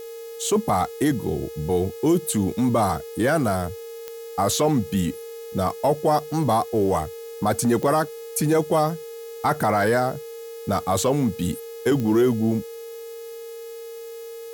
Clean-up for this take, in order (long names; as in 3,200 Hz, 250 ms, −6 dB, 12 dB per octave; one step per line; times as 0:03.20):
click removal
hum removal 420.5 Hz, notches 18
notch filter 460 Hz, Q 30
noise reduction from a noise print 30 dB